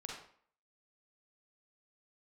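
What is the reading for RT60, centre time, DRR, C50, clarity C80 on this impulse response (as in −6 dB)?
0.55 s, 48 ms, −2.0 dB, 1.0 dB, 6.0 dB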